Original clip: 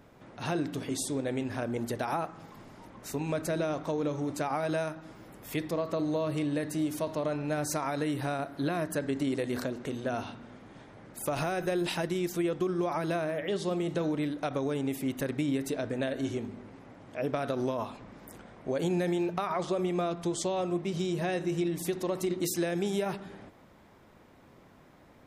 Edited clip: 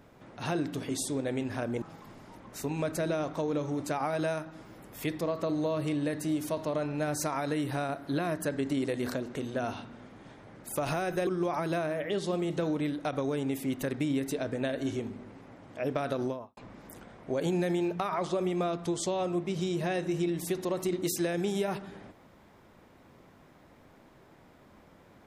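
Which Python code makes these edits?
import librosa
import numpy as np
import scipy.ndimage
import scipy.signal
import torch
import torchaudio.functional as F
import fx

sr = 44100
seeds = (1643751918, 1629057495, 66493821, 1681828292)

y = fx.studio_fade_out(x, sr, start_s=17.55, length_s=0.4)
y = fx.edit(y, sr, fx.cut(start_s=1.82, length_s=0.5),
    fx.cut(start_s=11.77, length_s=0.88), tone=tone)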